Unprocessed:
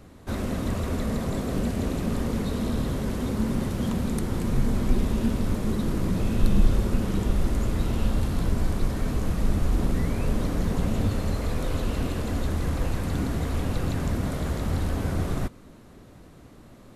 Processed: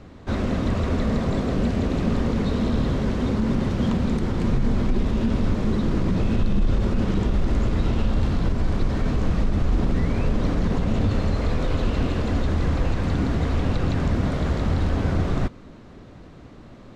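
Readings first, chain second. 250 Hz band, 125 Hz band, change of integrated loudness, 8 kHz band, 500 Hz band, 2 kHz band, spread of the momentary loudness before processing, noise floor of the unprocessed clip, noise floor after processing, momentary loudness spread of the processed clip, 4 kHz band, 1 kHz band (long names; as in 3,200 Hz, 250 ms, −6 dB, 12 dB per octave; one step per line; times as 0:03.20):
+4.0 dB, +4.0 dB, +3.5 dB, −5.5 dB, +4.0 dB, +4.0 dB, 3 LU, −49 dBFS, −44 dBFS, 2 LU, +2.5 dB, +4.0 dB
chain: high-shelf EQ 4,400 Hz +6.5 dB
brickwall limiter −17 dBFS, peak gain reduction 9.5 dB
high-frequency loss of the air 160 metres
level +5 dB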